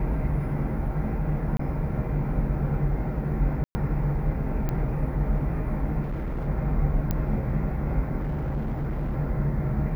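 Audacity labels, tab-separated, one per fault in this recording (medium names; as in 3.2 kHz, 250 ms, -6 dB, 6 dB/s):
1.570000	1.590000	dropout 24 ms
3.640000	3.750000	dropout 110 ms
4.690000	4.690000	pop -16 dBFS
6.010000	6.480000	clipped -26 dBFS
7.110000	7.110000	pop -13 dBFS
8.190000	9.150000	clipped -24.5 dBFS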